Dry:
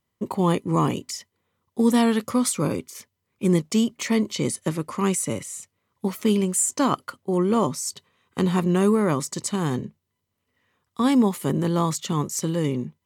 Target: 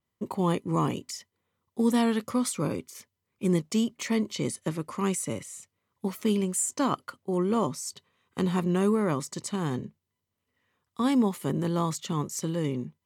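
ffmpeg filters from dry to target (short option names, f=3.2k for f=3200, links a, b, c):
-af "adynamicequalizer=threshold=0.00891:dfrequency=5600:dqfactor=0.7:tfrequency=5600:tqfactor=0.7:attack=5:release=100:ratio=0.375:range=2:mode=cutabove:tftype=highshelf,volume=-5dB"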